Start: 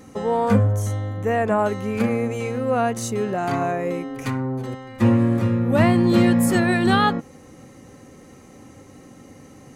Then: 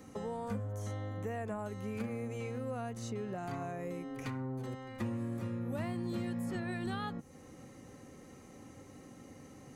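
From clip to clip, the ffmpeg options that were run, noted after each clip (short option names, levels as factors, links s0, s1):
-filter_complex "[0:a]acrossover=split=160|5900[s0][s1][s2];[s0]acompressor=threshold=0.0178:ratio=4[s3];[s1]acompressor=threshold=0.0251:ratio=4[s4];[s2]acompressor=threshold=0.00178:ratio=4[s5];[s3][s4][s5]amix=inputs=3:normalize=0,volume=0.398"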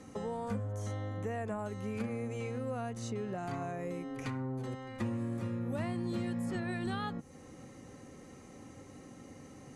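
-af "lowpass=f=11000:w=0.5412,lowpass=f=11000:w=1.3066,volume=1.19"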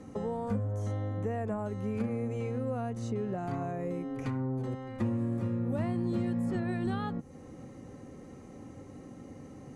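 -af "tiltshelf=f=1200:g=5"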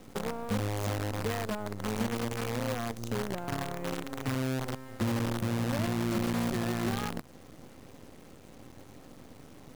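-af "acrusher=bits=6:dc=4:mix=0:aa=0.000001"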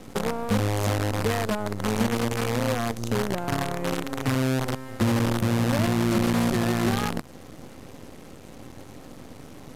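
-af "volume=2.37" -ar 32000 -c:a libvorbis -b:a 128k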